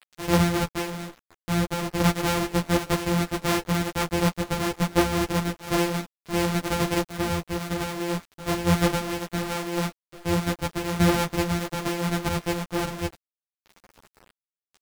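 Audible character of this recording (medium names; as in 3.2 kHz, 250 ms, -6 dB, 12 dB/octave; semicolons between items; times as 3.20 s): a buzz of ramps at a fixed pitch in blocks of 256 samples; random-step tremolo 3 Hz; a quantiser's noise floor 8-bit, dither none; a shimmering, thickened sound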